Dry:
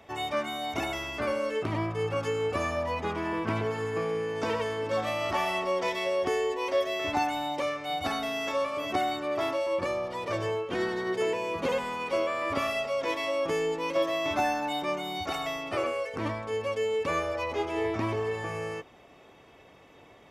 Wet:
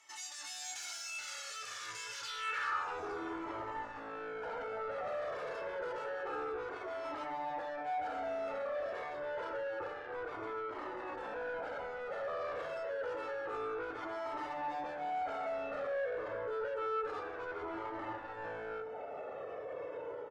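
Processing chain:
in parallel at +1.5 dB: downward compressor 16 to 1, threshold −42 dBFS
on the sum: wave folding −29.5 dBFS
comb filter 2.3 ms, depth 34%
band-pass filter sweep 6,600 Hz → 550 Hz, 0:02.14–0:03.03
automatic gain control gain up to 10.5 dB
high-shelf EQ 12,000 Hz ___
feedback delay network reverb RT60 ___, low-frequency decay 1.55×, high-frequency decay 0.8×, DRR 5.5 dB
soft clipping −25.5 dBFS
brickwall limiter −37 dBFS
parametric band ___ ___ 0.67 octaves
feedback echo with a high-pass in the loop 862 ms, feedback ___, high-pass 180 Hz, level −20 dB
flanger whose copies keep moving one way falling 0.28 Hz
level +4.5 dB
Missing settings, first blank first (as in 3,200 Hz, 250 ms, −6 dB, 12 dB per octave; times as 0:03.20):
+2 dB, 0.57 s, 1,400 Hz, +9.5 dB, 33%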